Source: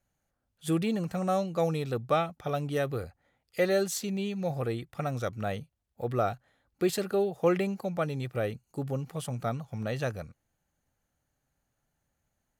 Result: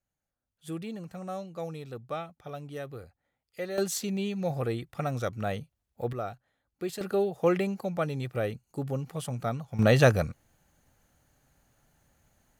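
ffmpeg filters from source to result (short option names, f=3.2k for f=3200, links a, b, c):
-af "asetnsamples=n=441:p=0,asendcmd='3.78 volume volume 1dB;6.13 volume volume -7dB;7.01 volume volume 0.5dB;9.79 volume volume 12dB',volume=-9dB"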